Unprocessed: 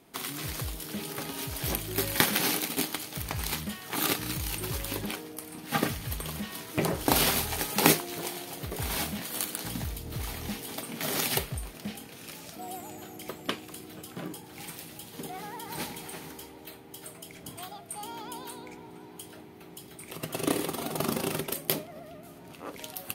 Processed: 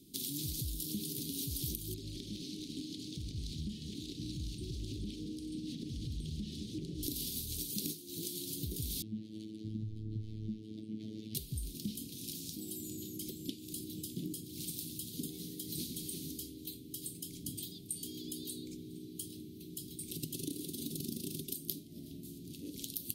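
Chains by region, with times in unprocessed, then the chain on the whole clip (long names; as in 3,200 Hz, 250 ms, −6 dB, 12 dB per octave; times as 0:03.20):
0:01.94–0:07.03: downward compressor 10 to 1, threshold −36 dBFS + high-frequency loss of the air 110 metres + delay that swaps between a low-pass and a high-pass 216 ms, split 860 Hz, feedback 62%, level −6 dB
0:09.02–0:11.35: low-pass filter 1,400 Hz + phases set to zero 108 Hz
whole clip: parametric band 1,300 Hz −6.5 dB 0.31 octaves; downward compressor 16 to 1, threshold −36 dBFS; Chebyshev band-stop filter 320–3,700 Hz, order 3; level +3 dB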